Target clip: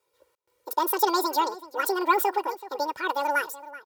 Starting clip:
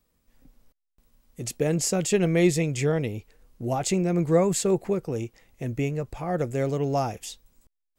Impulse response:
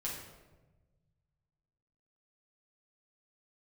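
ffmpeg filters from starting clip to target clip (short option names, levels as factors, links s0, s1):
-filter_complex "[0:a]highpass=200,aecho=1:1:4.4:0.98,asetrate=91287,aresample=44100,asplit=2[s0][s1];[s1]adelay=379,volume=0.158,highshelf=f=4000:g=-8.53[s2];[s0][s2]amix=inputs=2:normalize=0,volume=0.794"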